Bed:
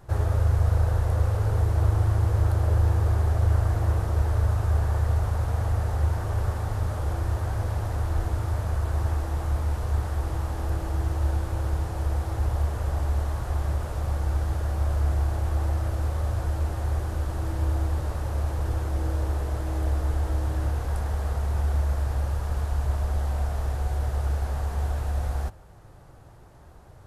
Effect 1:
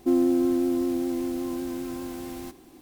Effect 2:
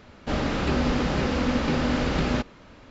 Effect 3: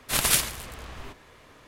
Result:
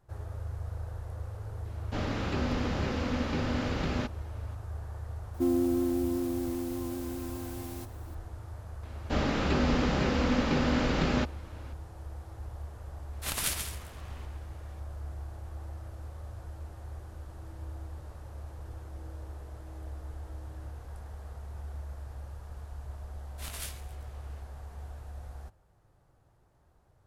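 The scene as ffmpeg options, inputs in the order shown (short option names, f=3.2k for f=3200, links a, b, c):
-filter_complex "[2:a]asplit=2[a][b];[3:a]asplit=2[c][d];[0:a]volume=-16dB[e];[1:a]highshelf=f=7.5k:g=7[f];[c]aecho=1:1:134|213:0.447|0.2[g];[d]flanger=delay=15.5:depth=5.9:speed=1.4[h];[a]atrim=end=2.9,asetpts=PTS-STARTPTS,volume=-7.5dB,afade=t=in:d=0.004:c=hsin,afade=t=out:st=2.896:d=0.004:c=hsin,adelay=1650[i];[f]atrim=end=2.81,asetpts=PTS-STARTPTS,volume=-5.5dB,afade=t=in:d=0.004:c=hsin,afade=t=out:st=2.806:d=0.004:c=hsin,adelay=5340[j];[b]atrim=end=2.9,asetpts=PTS-STARTPTS,volume=-3dB,afade=t=in:d=0.004:c=hsin,afade=t=out:st=2.896:d=0.004:c=hsin,adelay=8830[k];[g]atrim=end=1.67,asetpts=PTS-STARTPTS,volume=-10dB,afade=t=in:d=0.004:c=hsin,afade=t=out:st=1.666:d=0.004:c=hsin,adelay=13130[l];[h]atrim=end=1.67,asetpts=PTS-STARTPTS,volume=-15.5dB,afade=t=in:d=0.004:c=hsin,afade=t=out:st=1.666:d=0.004:c=hsin,adelay=23290[m];[e][i][j][k][l][m]amix=inputs=6:normalize=0"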